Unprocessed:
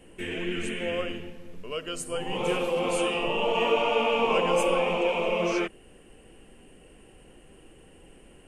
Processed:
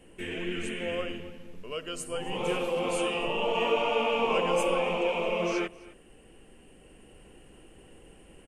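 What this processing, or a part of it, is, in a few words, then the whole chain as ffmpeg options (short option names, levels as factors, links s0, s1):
ducked delay: -filter_complex "[0:a]asplit=3[s0][s1][s2];[s1]adelay=262,volume=0.794[s3];[s2]apad=whole_len=385108[s4];[s3][s4]sidechaincompress=threshold=0.00562:ratio=8:attack=16:release=1050[s5];[s0][s5]amix=inputs=2:normalize=0,volume=0.75"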